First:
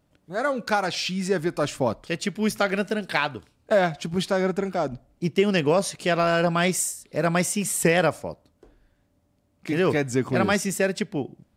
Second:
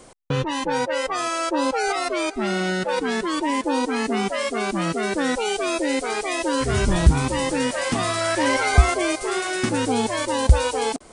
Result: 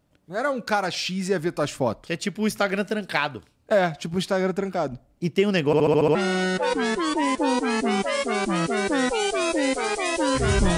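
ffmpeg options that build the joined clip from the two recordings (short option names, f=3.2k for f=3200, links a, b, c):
-filter_complex "[0:a]apad=whole_dur=10.77,atrim=end=10.77,asplit=7[a][b][c][d][e][f][g];[a]atrim=end=5.732[h];[b]atrim=start=5.658:end=5.732[i];[c]atrim=start=5.658:end=5.732[j];[d]atrim=start=5.658:end=5.732[k];[e]atrim=start=5.658:end=5.732[l];[f]atrim=start=5.658:end=5.732[m];[g]atrim=start=5.658:end=5.732[n];[1:a]atrim=start=2.408:end=7.03[o];[h][i]acrossfade=d=0.004:c1=hsin:c2=hsin[p];[p][j]acrossfade=d=0.004:c1=hsin:c2=hsin[q];[q][k]acrossfade=d=0.004:c1=hsin:c2=hsin[r];[r][l]acrossfade=d=0.004:c1=hsin:c2=hsin[s];[s][m]acrossfade=d=0.004:c1=hsin:c2=hsin[t];[t][n]acrossfade=d=0.004:c1=hsin:c2=hsin[u];[u][o]acrossfade=d=0.004:c1=hsin:c2=hsin"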